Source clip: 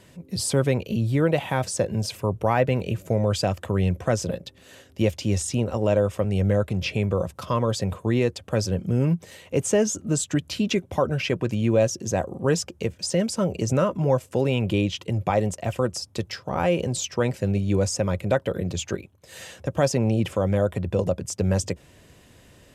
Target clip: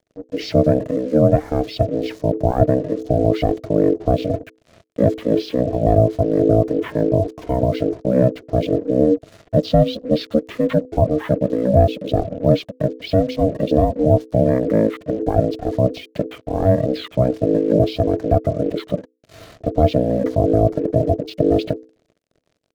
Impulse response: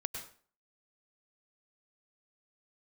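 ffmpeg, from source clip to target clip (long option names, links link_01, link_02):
-af "asetrate=23361,aresample=44100,atempo=1.88775,acrusher=bits=6:mix=0:aa=0.5,lowshelf=frequency=380:width_type=q:width=1.5:gain=9,bandreject=frequency=60:width_type=h:width=6,bandreject=frequency=120:width_type=h:width=6,aeval=exprs='val(0)*sin(2*PI*380*n/s)':channel_layout=same"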